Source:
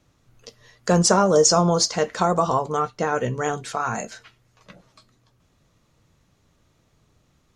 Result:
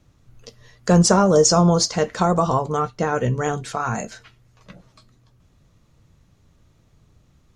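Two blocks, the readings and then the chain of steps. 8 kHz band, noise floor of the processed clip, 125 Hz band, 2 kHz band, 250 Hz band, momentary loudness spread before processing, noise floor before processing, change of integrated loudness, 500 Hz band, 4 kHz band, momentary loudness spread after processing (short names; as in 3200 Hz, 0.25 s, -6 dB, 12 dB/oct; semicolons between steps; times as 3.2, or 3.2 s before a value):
0.0 dB, -59 dBFS, +5.5 dB, 0.0 dB, +4.5 dB, 11 LU, -65 dBFS, +2.0 dB, +1.0 dB, 0.0 dB, 12 LU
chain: low shelf 190 Hz +9.5 dB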